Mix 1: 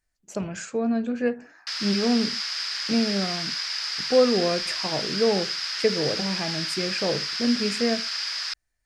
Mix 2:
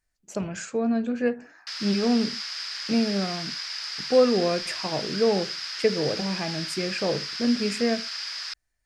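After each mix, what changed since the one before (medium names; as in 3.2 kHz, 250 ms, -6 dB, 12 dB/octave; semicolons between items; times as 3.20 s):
background -4.0 dB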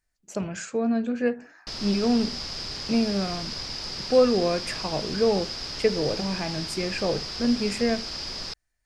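background: remove resonant high-pass 1.6 kHz, resonance Q 2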